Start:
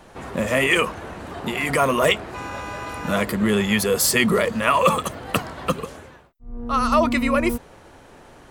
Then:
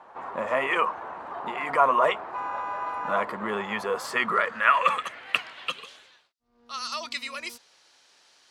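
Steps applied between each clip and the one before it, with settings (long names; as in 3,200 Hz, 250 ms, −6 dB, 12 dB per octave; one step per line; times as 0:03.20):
band-pass filter sweep 980 Hz → 4,800 Hz, 0:03.91–0:06.42
level +4.5 dB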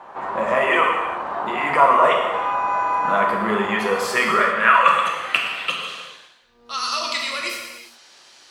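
in parallel at −1.5 dB: downward compressor, threshold −32 dBFS, peak gain reduction 16.5 dB
on the sum: reverb whose tail is shaped and stops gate 430 ms falling, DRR −0.5 dB
level +2 dB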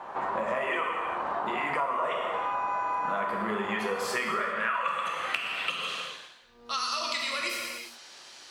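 downward compressor 5 to 1, threshold −28 dBFS, peak gain reduction 17 dB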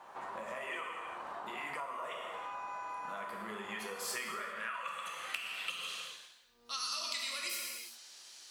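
first-order pre-emphasis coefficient 0.8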